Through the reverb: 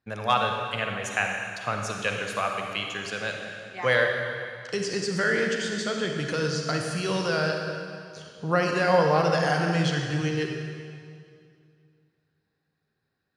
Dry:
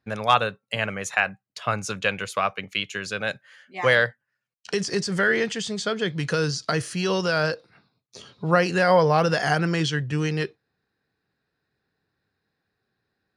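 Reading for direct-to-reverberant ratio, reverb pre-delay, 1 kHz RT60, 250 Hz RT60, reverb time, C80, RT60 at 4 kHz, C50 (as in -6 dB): 2.0 dB, 38 ms, 2.2 s, 2.5 s, 2.3 s, 3.5 dB, 2.1 s, 2.5 dB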